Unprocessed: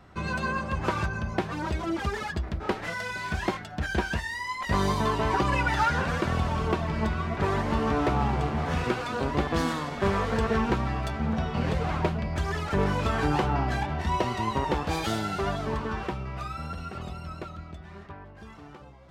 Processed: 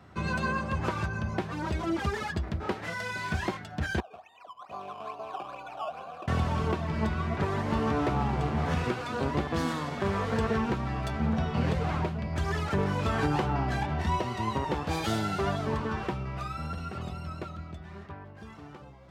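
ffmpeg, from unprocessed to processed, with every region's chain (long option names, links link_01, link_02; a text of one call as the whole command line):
ffmpeg -i in.wav -filter_complex "[0:a]asettb=1/sr,asplit=3[link_01][link_02][link_03];[link_01]atrim=end=4.004[link_04];[link_02]atrim=start=4:end=6.28,asetpts=PTS-STARTPTS,afade=type=in:duration=0.004:curve=qsin,afade=type=out:start_time=2.276:duration=0.004:curve=qsin,highshelf=frequency=2400:gain=-8.5,acrusher=samples=15:mix=1:aa=0.000001:lfo=1:lforange=15:lforate=2.3,asplit=3[link_05][link_06][link_07];[link_05]bandpass=frequency=730:width_type=q:width=8,volume=0dB[link_08];[link_06]bandpass=frequency=1090:width_type=q:width=8,volume=-6dB[link_09];[link_07]bandpass=frequency=2440:width_type=q:width=8,volume=-9dB[link_10];[link_08][link_09][link_10]amix=inputs=3:normalize=0[link_11];[link_03]atrim=start=6.276[link_12];[link_04][link_11]acrossfade=duration=0.004:curve1=hsin:curve2=qsin[link_13];[link_13][link_12]acrossfade=duration=0.004:curve1=qsin:curve2=hsin,highpass=frequency=70:width=0.5412,highpass=frequency=70:width=1.3066,lowshelf=frequency=210:gain=3.5,alimiter=limit=-16.5dB:level=0:latency=1:release=456,volume=-1dB" out.wav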